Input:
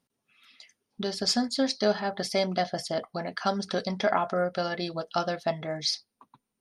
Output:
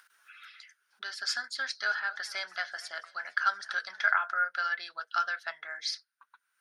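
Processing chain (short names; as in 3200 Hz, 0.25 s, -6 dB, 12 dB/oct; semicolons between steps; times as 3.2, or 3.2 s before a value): upward compressor, threshold -41 dBFS; resonant high-pass 1500 Hz, resonance Q 9.9; 1.69–4.15 warbling echo 0.234 s, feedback 61%, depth 151 cents, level -20 dB; gain -6.5 dB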